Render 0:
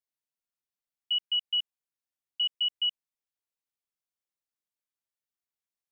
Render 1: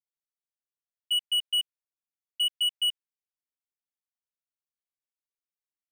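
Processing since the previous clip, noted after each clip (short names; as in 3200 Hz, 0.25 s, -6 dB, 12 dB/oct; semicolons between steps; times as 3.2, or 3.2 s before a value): comb 7.1 ms, depth 59%; dynamic EQ 2800 Hz, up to +7 dB, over -37 dBFS, Q 0.75; sample leveller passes 2; gain -8.5 dB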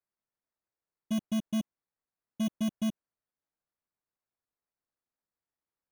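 sample-and-hold 14×; gain -3.5 dB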